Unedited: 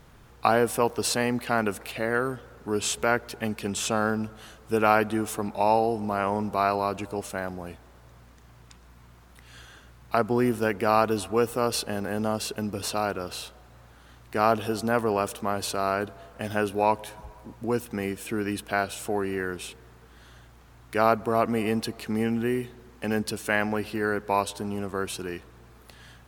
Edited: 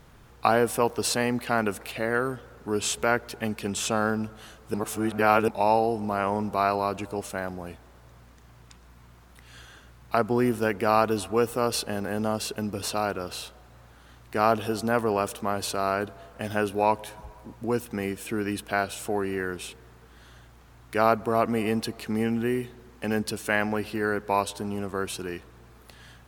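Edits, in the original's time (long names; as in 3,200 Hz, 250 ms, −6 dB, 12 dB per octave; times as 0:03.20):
0:04.74–0:05.48: reverse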